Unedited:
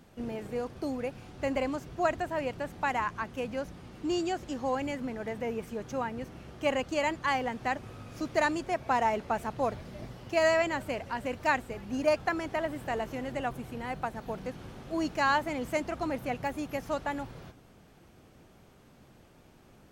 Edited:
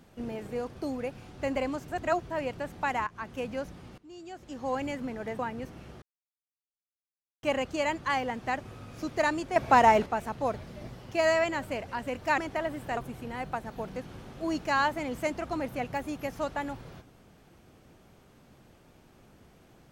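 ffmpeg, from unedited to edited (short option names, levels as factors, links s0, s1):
-filter_complex "[0:a]asplit=11[s0][s1][s2][s3][s4][s5][s6][s7][s8][s9][s10];[s0]atrim=end=1.882[s11];[s1]atrim=start=1.878:end=2.302,asetpts=PTS-STARTPTS,areverse[s12];[s2]atrim=start=2.298:end=3.07,asetpts=PTS-STARTPTS,afade=t=out:st=0.768:d=0.004:c=hsin:silence=0.16788[s13];[s3]atrim=start=3.07:end=3.98,asetpts=PTS-STARTPTS,afade=t=in:d=0.35:c=qsin:silence=0.16788,afade=t=out:st=0.906:d=0.004:c=hsin:silence=0.0944061[s14];[s4]atrim=start=3.98:end=5.392,asetpts=PTS-STARTPTS,afade=t=in:d=0.77:c=qua:silence=0.0944061[s15];[s5]atrim=start=5.978:end=6.61,asetpts=PTS-STARTPTS,afade=t=out:st=0.628:d=0.004:c=hsin,apad=pad_dur=1.41[s16];[s6]atrim=start=6.61:end=8.742,asetpts=PTS-STARTPTS,afade=t=in:d=0.004:c=hsin[s17];[s7]atrim=start=8.738:end=9.242,asetpts=PTS-STARTPTS,volume=2.37[s18];[s8]atrim=start=9.238:end=11.562[s19];[s9]atrim=start=12.368:end=12.962[s20];[s10]atrim=start=13.468[s21];[s11][s12]acrossfade=d=0.004:c1=hsin:c2=hsin[s22];[s13][s14][s15]concat=n=3:v=0:a=1[s23];[s22][s23]acrossfade=d=0.004:c1=hsin:c2=hsin[s24];[s16][s17]concat=n=2:v=0:a=1[s25];[s24][s25]acrossfade=d=0.004:c1=hsin:c2=hsin[s26];[s26][s18]acrossfade=d=0.004:c1=hsin:c2=hsin[s27];[s27][s19]acrossfade=d=0.004:c1=hsin:c2=hsin[s28];[s28][s20]acrossfade=d=0.004:c1=hsin:c2=hsin[s29];[s29][s21]acrossfade=d=0.004:c1=hsin:c2=hsin"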